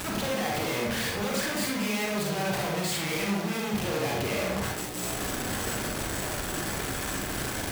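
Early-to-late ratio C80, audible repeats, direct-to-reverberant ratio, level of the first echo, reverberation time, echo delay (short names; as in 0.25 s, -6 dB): 5.0 dB, none, -2.5 dB, none, 0.65 s, none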